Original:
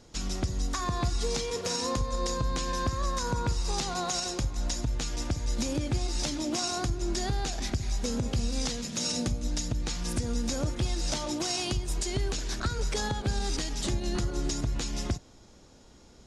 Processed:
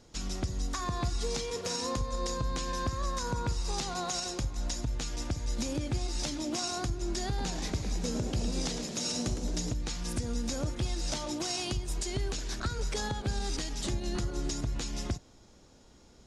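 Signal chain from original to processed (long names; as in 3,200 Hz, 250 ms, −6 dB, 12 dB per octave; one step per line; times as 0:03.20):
0:07.27–0:09.74: echo with shifted repeats 109 ms, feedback 53%, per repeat +130 Hz, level −9.5 dB
level −3 dB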